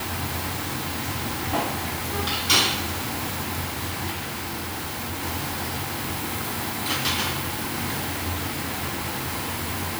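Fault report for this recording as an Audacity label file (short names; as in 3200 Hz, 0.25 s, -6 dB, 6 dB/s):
4.110000	5.240000	clipped -27 dBFS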